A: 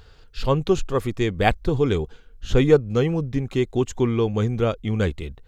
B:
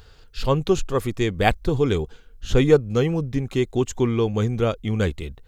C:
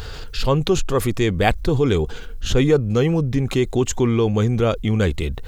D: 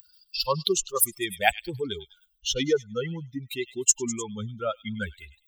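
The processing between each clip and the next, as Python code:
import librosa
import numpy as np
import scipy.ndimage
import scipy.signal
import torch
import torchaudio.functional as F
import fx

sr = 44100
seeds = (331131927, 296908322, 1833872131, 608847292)

y1 = fx.high_shelf(x, sr, hz=6500.0, db=6.5)
y2 = fx.env_flatten(y1, sr, amount_pct=50)
y2 = y2 * librosa.db_to_amplitude(-2.0)
y3 = fx.bin_expand(y2, sr, power=3.0)
y3 = fx.riaa(y3, sr, side='recording')
y3 = fx.echo_stepped(y3, sr, ms=101, hz=3300.0, octaves=0.7, feedback_pct=70, wet_db=-11.5)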